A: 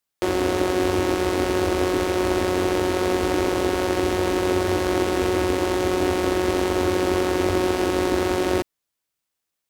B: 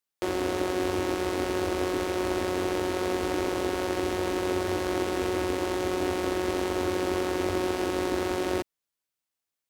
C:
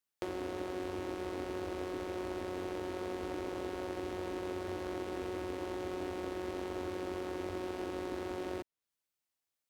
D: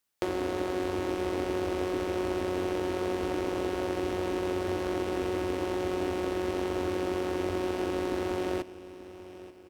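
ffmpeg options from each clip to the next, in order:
ffmpeg -i in.wav -af "lowshelf=frequency=160:gain=-3,volume=-6dB" out.wav
ffmpeg -i in.wav -filter_complex "[0:a]acrossover=split=980|4300[link_01][link_02][link_03];[link_01]acompressor=threshold=-35dB:ratio=4[link_04];[link_02]acompressor=threshold=-47dB:ratio=4[link_05];[link_03]acompressor=threshold=-58dB:ratio=4[link_06];[link_04][link_05][link_06]amix=inputs=3:normalize=0,volume=-2.5dB" out.wav
ffmpeg -i in.wav -af "aecho=1:1:884|1768|2652|3536:0.15|0.0688|0.0317|0.0146,volume=8dB" out.wav

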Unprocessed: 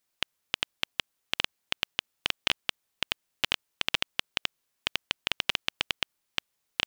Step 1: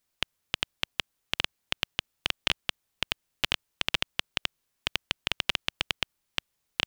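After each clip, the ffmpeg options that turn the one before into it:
ffmpeg -i in.wav -af "lowshelf=frequency=150:gain=8.5" out.wav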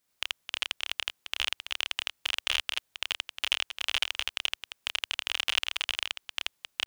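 ffmpeg -i in.wav -af "lowshelf=frequency=74:gain=-9,aeval=exprs='clip(val(0),-1,0.15)':channel_layout=same,aecho=1:1:29.15|81.63|265.3:0.631|1|0.355" out.wav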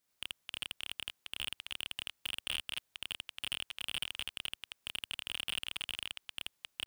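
ffmpeg -i in.wav -af "asoftclip=type=hard:threshold=-22dB,volume=-3.5dB" out.wav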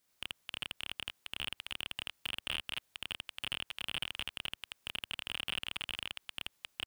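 ffmpeg -i in.wav -filter_complex "[0:a]acrossover=split=2800[link_01][link_02];[link_02]acompressor=threshold=-43dB:ratio=4:attack=1:release=60[link_03];[link_01][link_03]amix=inputs=2:normalize=0,volume=4dB" out.wav

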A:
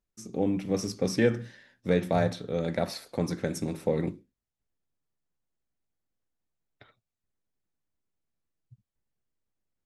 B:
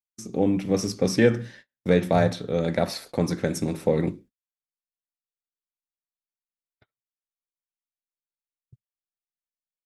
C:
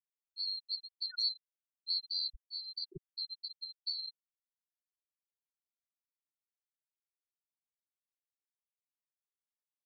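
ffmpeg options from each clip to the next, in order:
ffmpeg -i in.wav -af "agate=range=-36dB:threshold=-51dB:ratio=16:detection=peak,volume=5dB" out.wav
ffmpeg -i in.wav -af "afftfilt=real='real(if(lt(b,736),b+184*(1-2*mod(floor(b/184),2)),b),0)':imag='imag(if(lt(b,736),b+184*(1-2*mod(floor(b/184),2)),b),0)':win_size=2048:overlap=0.75,bass=frequency=250:gain=9,treble=frequency=4000:gain=-11,afftfilt=real='re*gte(hypot(re,im),0.178)':imag='im*gte(hypot(re,im),0.178)':win_size=1024:overlap=0.75,volume=-9dB" out.wav

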